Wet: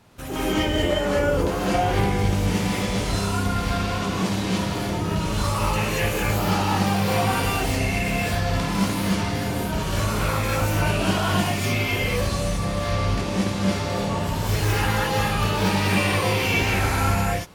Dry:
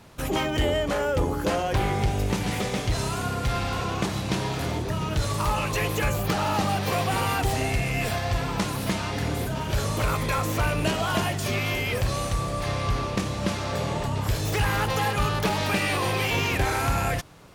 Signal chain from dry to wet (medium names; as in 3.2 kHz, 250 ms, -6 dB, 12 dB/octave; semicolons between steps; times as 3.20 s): gated-style reverb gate 260 ms rising, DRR -7.5 dB; trim -5.5 dB